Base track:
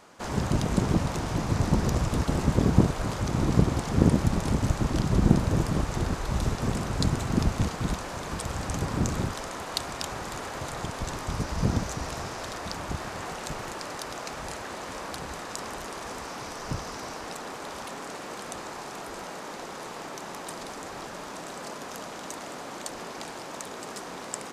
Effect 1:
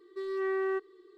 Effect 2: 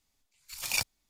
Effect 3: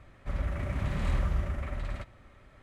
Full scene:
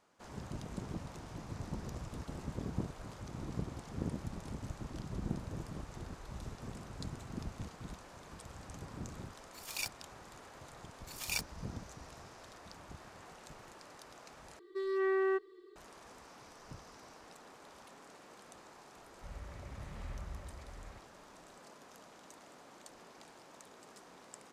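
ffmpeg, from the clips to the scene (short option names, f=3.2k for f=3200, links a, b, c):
-filter_complex "[2:a]asplit=2[a][b];[0:a]volume=-18dB,asplit=2[c][d];[c]atrim=end=14.594[e];[1:a]atrim=end=1.17,asetpts=PTS-STARTPTS,volume=-0.5dB[f];[d]atrim=start=15.756[g];[a]atrim=end=1.09,asetpts=PTS-STARTPTS,volume=-9.5dB,afade=t=in:d=0.004:c=hsin,afade=t=out:st=1.086:d=0.004:c=hsin,adelay=9050[h];[b]atrim=end=1.09,asetpts=PTS-STARTPTS,volume=-7dB,afade=t=in:d=0.004:c=hsin,afade=t=out:st=1.086:d=0.004:c=hsin,adelay=466578S[i];[3:a]atrim=end=2.62,asetpts=PTS-STARTPTS,volume=-16dB,afade=t=in:d=0.004:c=hsin,afade=t=out:st=2.616:d=0.004:c=hsin,adelay=18960[j];[e][f]acrossfade=d=0.004:c1=hsin:c2=hsin[k];[k][g]acrossfade=d=0.004:c1=hsin:c2=hsin[l];[l][h][i][j]amix=inputs=4:normalize=0"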